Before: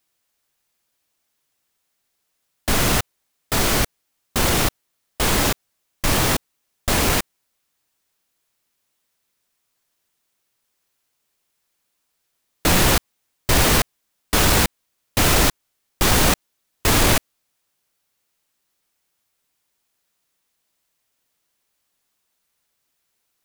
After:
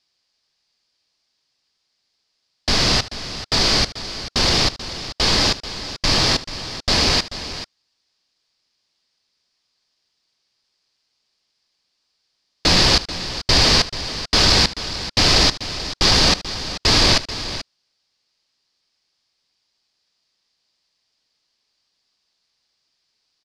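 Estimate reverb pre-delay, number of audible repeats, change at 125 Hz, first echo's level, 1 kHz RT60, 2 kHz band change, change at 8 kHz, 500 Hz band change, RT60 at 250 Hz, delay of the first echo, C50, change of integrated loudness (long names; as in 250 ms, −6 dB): no reverb audible, 2, −0.5 dB, −16.5 dB, no reverb audible, +0.5 dB, −2.0 dB, −0.5 dB, no reverb audible, 75 ms, no reverb audible, +2.0 dB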